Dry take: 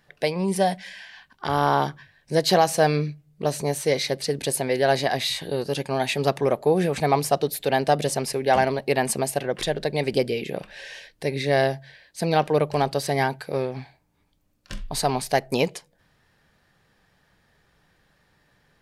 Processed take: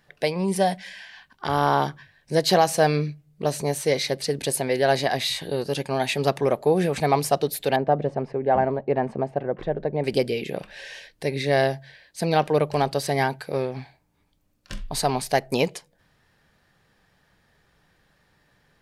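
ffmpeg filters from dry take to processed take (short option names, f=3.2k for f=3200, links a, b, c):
-filter_complex "[0:a]asettb=1/sr,asplit=3[a][b][c];[a]atrim=end=7.764[d];[b]atrim=start=7.76:end=10.04,asetpts=PTS-STARTPTS,afade=t=in:d=0.004:c=qsin,afade=t=out:st=2.276:d=0.004:c=qsin,lowpass=1.1k[e];[c]atrim=start=10.036[f];[d][e]acrossfade=d=0.004:c1=hsin:c2=qsin[g];[g][f]acrossfade=d=0.004:c1=qsin:c2=hsin"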